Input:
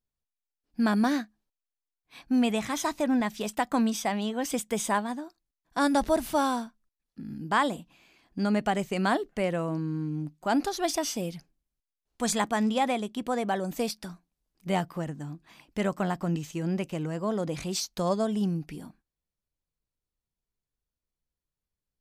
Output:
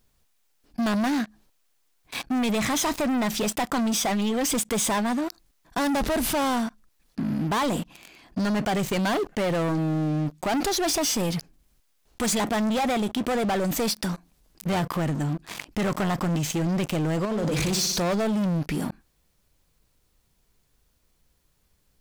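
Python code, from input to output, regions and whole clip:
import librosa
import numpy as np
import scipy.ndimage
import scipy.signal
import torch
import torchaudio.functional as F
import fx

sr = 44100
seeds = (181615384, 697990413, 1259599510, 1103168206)

y = fx.chain(x, sr, fx.over_compress(threshold_db=-33.0, ratio=-0.5),
    fx.room_flutter(wall_m=10.3, rt60_s=0.57), at=(17.25, 18.0))
y = fx.leveller(y, sr, passes=5)
y = fx.env_flatten(y, sr, amount_pct=50)
y = F.gain(torch.from_numpy(y), -8.5).numpy()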